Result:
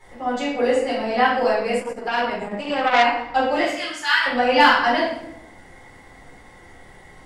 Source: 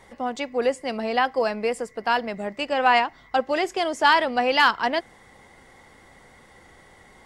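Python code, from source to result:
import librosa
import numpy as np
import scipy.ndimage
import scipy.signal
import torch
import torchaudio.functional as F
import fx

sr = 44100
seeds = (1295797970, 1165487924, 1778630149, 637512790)

y = fx.highpass(x, sr, hz=1300.0, slope=24, at=(3.61, 4.26))
y = fx.room_shoebox(y, sr, seeds[0], volume_m3=210.0, walls='mixed', distance_m=4.1)
y = fx.transformer_sat(y, sr, knee_hz=1600.0, at=(1.79, 3.06))
y = F.gain(torch.from_numpy(y), -8.0).numpy()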